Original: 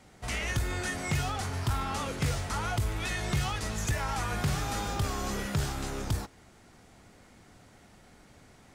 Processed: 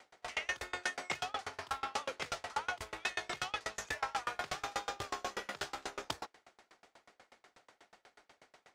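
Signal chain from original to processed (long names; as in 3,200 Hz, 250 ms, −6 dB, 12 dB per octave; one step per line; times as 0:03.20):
three-way crossover with the lows and the highs turned down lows −24 dB, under 390 Hz, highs −13 dB, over 6,300 Hz
tremolo with a ramp in dB decaying 8.2 Hz, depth 32 dB
level +5 dB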